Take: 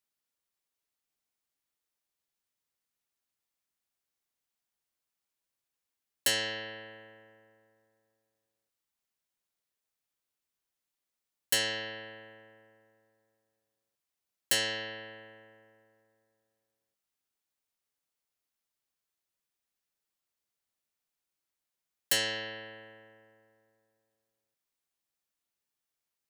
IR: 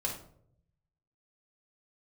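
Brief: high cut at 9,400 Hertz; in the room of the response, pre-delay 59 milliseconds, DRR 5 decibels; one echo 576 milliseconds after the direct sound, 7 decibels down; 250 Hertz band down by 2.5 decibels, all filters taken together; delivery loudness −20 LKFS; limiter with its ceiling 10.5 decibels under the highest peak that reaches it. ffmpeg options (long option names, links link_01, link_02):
-filter_complex "[0:a]lowpass=9400,equalizer=frequency=250:width_type=o:gain=-3.5,alimiter=level_in=2dB:limit=-24dB:level=0:latency=1,volume=-2dB,aecho=1:1:576:0.447,asplit=2[link_01][link_02];[1:a]atrim=start_sample=2205,adelay=59[link_03];[link_02][link_03]afir=irnorm=-1:irlink=0,volume=-9dB[link_04];[link_01][link_04]amix=inputs=2:normalize=0,volume=18dB"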